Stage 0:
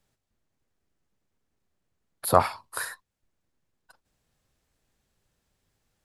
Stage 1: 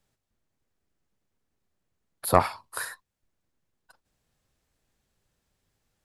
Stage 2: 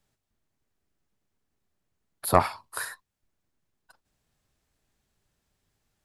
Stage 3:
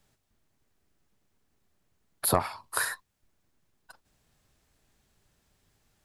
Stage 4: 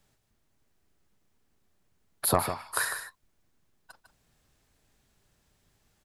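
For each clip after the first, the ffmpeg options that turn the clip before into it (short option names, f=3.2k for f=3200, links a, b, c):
-af "aeval=exprs='0.75*(cos(1*acos(clip(val(0)/0.75,-1,1)))-cos(1*PI/2))+0.188*(cos(2*acos(clip(val(0)/0.75,-1,1)))-cos(2*PI/2))':c=same,volume=-1dB"
-af "bandreject=f=510:w=13"
-af "acompressor=threshold=-29dB:ratio=4,volume=6dB"
-af "aecho=1:1:151:0.355"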